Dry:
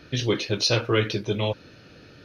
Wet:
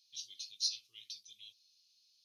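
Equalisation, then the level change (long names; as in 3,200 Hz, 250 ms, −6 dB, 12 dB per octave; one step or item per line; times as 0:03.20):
inverse Chebyshev high-pass filter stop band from 1,700 Hz, stop band 50 dB
−7.5 dB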